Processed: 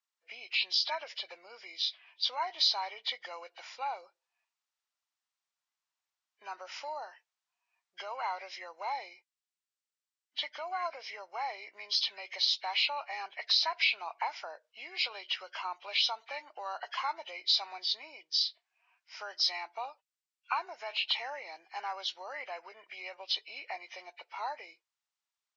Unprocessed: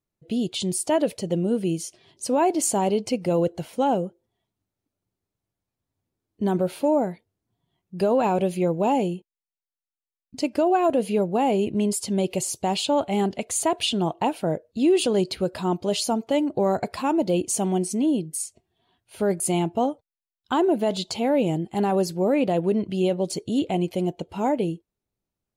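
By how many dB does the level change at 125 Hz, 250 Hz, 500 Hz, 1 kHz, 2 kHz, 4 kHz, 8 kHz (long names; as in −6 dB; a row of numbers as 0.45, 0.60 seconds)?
below −40 dB, below −40 dB, −23.5 dB, −10.0 dB, +1.0 dB, +3.0 dB, −20.5 dB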